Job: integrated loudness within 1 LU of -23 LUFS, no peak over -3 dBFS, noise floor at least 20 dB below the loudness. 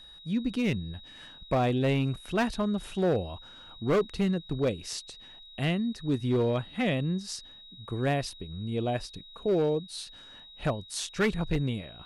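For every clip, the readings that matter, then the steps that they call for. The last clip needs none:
clipped 1.3%; flat tops at -20.5 dBFS; steady tone 3800 Hz; tone level -48 dBFS; loudness -30.0 LUFS; peak -20.5 dBFS; loudness target -23.0 LUFS
-> clip repair -20.5 dBFS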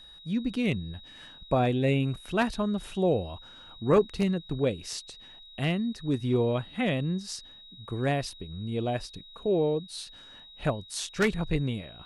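clipped 0.0%; steady tone 3800 Hz; tone level -48 dBFS
-> notch 3800 Hz, Q 30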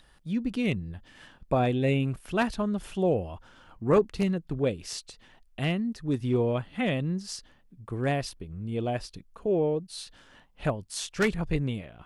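steady tone none; loudness -29.0 LUFS; peak -11.5 dBFS; loudness target -23.0 LUFS
-> gain +6 dB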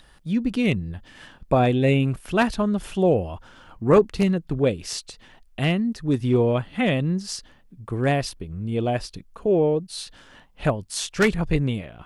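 loudness -23.0 LUFS; peak -5.5 dBFS; noise floor -54 dBFS

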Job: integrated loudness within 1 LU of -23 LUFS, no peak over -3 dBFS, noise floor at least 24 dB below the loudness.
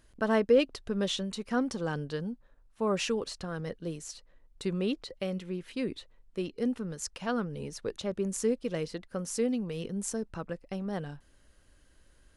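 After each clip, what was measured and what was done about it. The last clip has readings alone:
loudness -33.0 LUFS; peak -13.5 dBFS; loudness target -23.0 LUFS
-> gain +10 dB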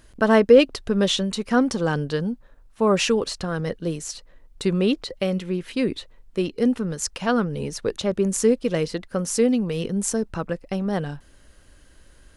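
loudness -23.0 LUFS; peak -3.5 dBFS; noise floor -53 dBFS

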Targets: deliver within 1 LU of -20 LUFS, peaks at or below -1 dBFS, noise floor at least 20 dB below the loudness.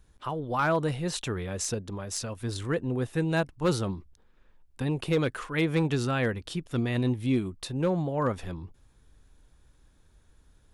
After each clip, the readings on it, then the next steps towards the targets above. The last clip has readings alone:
clipped 0.3%; flat tops at -18.0 dBFS; loudness -29.5 LUFS; peak -18.0 dBFS; loudness target -20.0 LUFS
-> clip repair -18 dBFS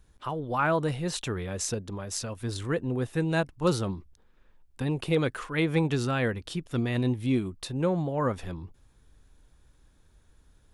clipped 0.0%; loudness -29.5 LUFS; peak -11.5 dBFS; loudness target -20.0 LUFS
-> gain +9.5 dB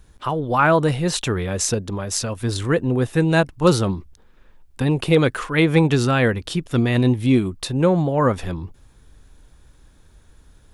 loudness -20.0 LUFS; peak -2.0 dBFS; noise floor -52 dBFS

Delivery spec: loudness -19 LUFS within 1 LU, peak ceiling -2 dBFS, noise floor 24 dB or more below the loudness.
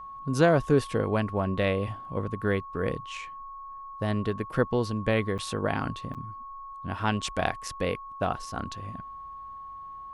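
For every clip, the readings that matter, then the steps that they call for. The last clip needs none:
dropouts 2; longest dropout 7.5 ms; steady tone 1100 Hz; tone level -39 dBFS; loudness -29.0 LUFS; peak -7.5 dBFS; loudness target -19.0 LUFS
-> interpolate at 5.38/6.14, 7.5 ms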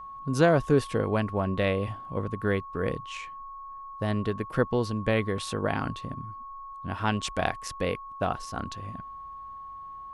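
dropouts 0; steady tone 1100 Hz; tone level -39 dBFS
-> notch 1100 Hz, Q 30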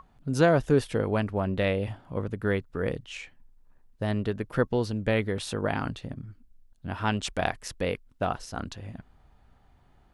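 steady tone none; loudness -29.0 LUFS; peak -7.5 dBFS; loudness target -19.0 LUFS
-> gain +10 dB; limiter -2 dBFS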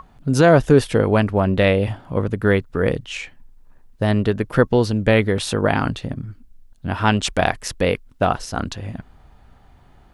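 loudness -19.5 LUFS; peak -2.0 dBFS; noise floor -51 dBFS

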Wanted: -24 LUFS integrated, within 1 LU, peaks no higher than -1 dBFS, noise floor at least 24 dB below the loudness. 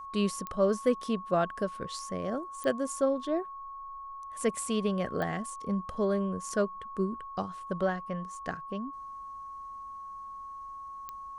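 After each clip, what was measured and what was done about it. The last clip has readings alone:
clicks 4; steady tone 1100 Hz; tone level -40 dBFS; loudness -33.0 LUFS; peak -13.0 dBFS; loudness target -24.0 LUFS
-> de-click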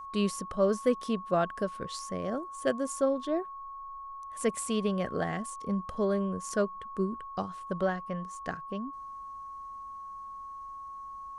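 clicks 0; steady tone 1100 Hz; tone level -40 dBFS
-> notch 1100 Hz, Q 30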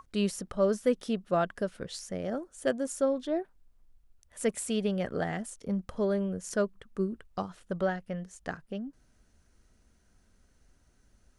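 steady tone none; loudness -32.5 LUFS; peak -13.5 dBFS; loudness target -24.0 LUFS
-> gain +8.5 dB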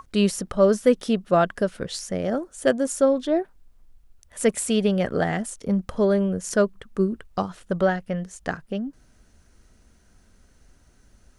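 loudness -24.0 LUFS; peak -5.0 dBFS; noise floor -58 dBFS

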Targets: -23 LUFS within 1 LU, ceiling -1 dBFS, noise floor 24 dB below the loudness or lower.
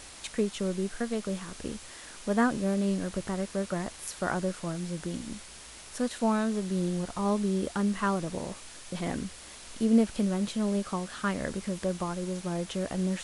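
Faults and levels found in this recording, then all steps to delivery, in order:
noise floor -47 dBFS; noise floor target -55 dBFS; loudness -31.0 LUFS; peak -13.0 dBFS; loudness target -23.0 LUFS
-> noise print and reduce 8 dB; gain +8 dB

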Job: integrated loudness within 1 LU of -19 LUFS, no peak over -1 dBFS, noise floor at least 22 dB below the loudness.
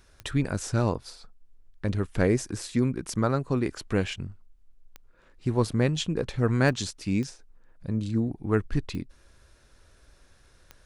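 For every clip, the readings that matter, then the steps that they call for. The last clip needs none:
clicks 6; loudness -28.0 LUFS; peak -7.0 dBFS; loudness target -19.0 LUFS
-> de-click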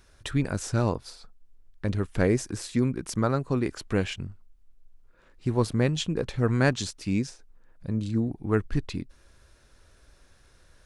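clicks 0; loudness -28.0 LUFS; peak -7.0 dBFS; loudness target -19.0 LUFS
-> gain +9 dB; limiter -1 dBFS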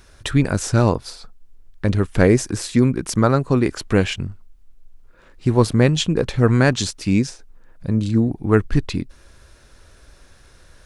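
loudness -19.5 LUFS; peak -1.0 dBFS; noise floor -50 dBFS

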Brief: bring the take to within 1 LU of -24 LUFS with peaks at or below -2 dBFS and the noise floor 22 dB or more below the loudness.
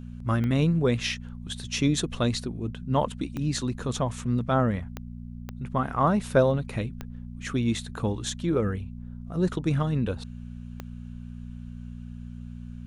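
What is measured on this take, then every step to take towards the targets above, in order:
clicks 6; hum 60 Hz; harmonics up to 240 Hz; hum level -36 dBFS; loudness -27.5 LUFS; peak -8.5 dBFS; loudness target -24.0 LUFS
-> de-click; de-hum 60 Hz, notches 4; gain +3.5 dB

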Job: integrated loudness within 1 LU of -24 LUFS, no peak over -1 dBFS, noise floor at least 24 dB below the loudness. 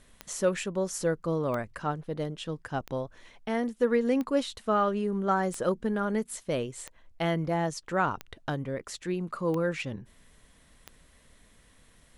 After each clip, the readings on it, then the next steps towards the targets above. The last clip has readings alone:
clicks 9; loudness -30.5 LUFS; peak -13.0 dBFS; loudness target -24.0 LUFS
-> de-click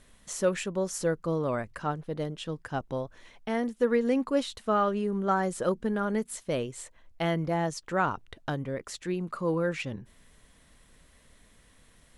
clicks 0; loudness -30.5 LUFS; peak -13.0 dBFS; loudness target -24.0 LUFS
-> gain +6.5 dB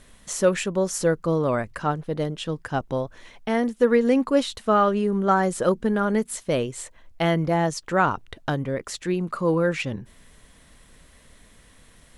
loudness -24.0 LUFS; peak -7.0 dBFS; noise floor -54 dBFS

